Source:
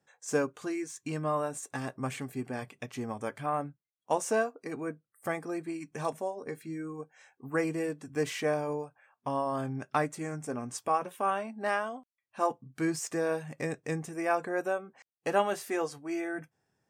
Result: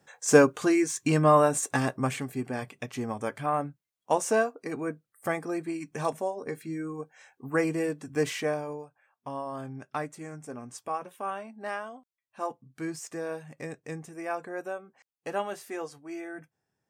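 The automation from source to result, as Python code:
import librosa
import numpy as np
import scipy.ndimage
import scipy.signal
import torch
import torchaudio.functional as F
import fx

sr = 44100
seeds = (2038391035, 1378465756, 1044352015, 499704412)

y = fx.gain(x, sr, db=fx.line((1.68, 11.0), (2.26, 3.5), (8.28, 3.5), (8.78, -4.5)))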